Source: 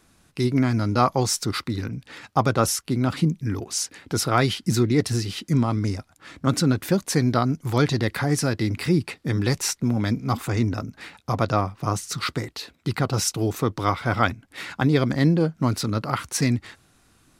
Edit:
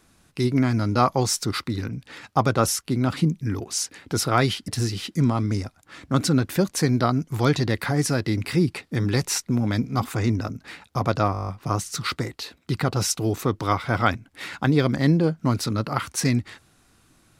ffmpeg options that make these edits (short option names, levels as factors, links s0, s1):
-filter_complex "[0:a]asplit=10[s0][s1][s2][s3][s4][s5][s6][s7][s8][s9];[s0]atrim=end=4.682[s10];[s1]atrim=start=5.008:end=11.672[s11];[s2]atrim=start=11.648:end=11.672[s12];[s3]atrim=start=11.648:end=11.672[s13];[s4]atrim=start=11.648:end=11.672[s14];[s5]atrim=start=11.648:end=11.672[s15];[s6]atrim=start=11.648:end=11.672[s16];[s7]atrim=start=11.648:end=11.672[s17];[s8]atrim=start=11.648:end=11.672[s18];[s9]atrim=start=11.648[s19];[s10][s11]acrossfade=d=0.004:c1=hsin:c2=hsin[s20];[s20][s12]acrossfade=d=0.004:c1=hsin:c2=hsin[s21];[s21][s13]acrossfade=d=0.004:c1=hsin:c2=hsin[s22];[s22][s14]acrossfade=d=0.004:c1=hsin:c2=hsin[s23];[s23][s15]acrossfade=d=0.004:c1=hsin:c2=hsin[s24];[s24][s16]acrossfade=d=0.004:c1=hsin:c2=hsin[s25];[s25][s17]acrossfade=d=0.004:c1=hsin:c2=hsin[s26];[s26][s18]acrossfade=d=0.004:c1=hsin:c2=hsin[s27];[s27][s19]acrossfade=d=0.004:c1=hsin:c2=hsin"